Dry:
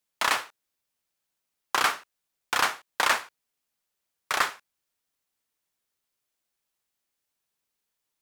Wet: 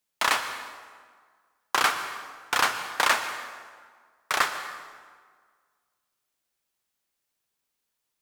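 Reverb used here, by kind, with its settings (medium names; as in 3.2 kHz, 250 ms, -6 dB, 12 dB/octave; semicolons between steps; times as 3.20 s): plate-style reverb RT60 1.7 s, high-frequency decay 0.7×, pre-delay 105 ms, DRR 9.5 dB; trim +1 dB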